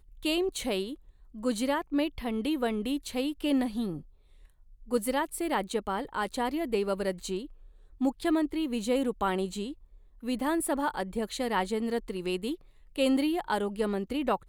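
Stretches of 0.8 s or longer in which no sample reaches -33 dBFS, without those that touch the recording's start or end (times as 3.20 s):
3.97–4.92 s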